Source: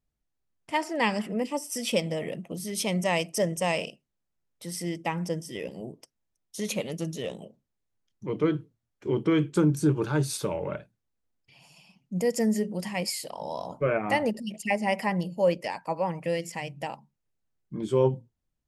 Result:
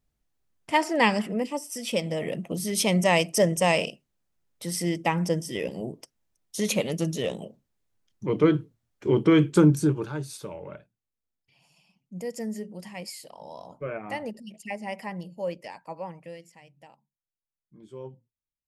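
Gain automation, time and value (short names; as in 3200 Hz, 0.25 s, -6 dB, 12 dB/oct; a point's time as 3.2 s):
0.99 s +5 dB
1.81 s -3 dB
2.43 s +5 dB
9.68 s +5 dB
10.21 s -8 dB
16.04 s -8 dB
16.56 s -18 dB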